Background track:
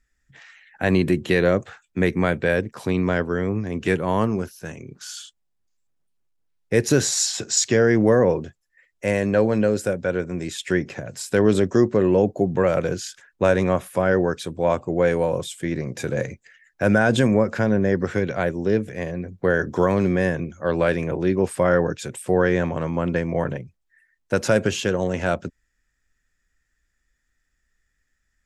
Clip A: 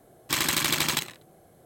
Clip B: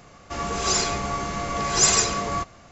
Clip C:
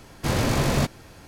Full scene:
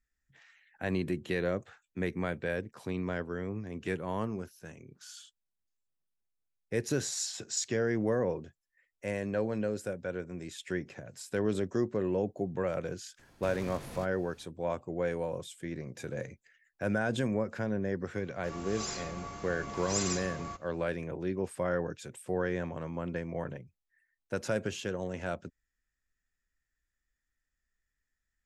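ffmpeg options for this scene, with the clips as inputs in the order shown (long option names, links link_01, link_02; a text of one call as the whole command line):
ffmpeg -i bed.wav -i cue0.wav -i cue1.wav -i cue2.wav -filter_complex "[0:a]volume=-13dB[link_01];[3:a]alimiter=limit=-20dB:level=0:latency=1:release=202,atrim=end=1.27,asetpts=PTS-STARTPTS,volume=-15dB,afade=type=in:duration=0.004:curve=hsin,afade=type=out:start_time=1.266:duration=0.004:curve=hsin,adelay=13190[link_02];[2:a]atrim=end=2.71,asetpts=PTS-STARTPTS,volume=-15.5dB,afade=type=in:duration=0.004:curve=hsin,afade=type=out:start_time=2.706:duration=0.004:curve=hsin,adelay=18130[link_03];[link_01][link_02][link_03]amix=inputs=3:normalize=0" out.wav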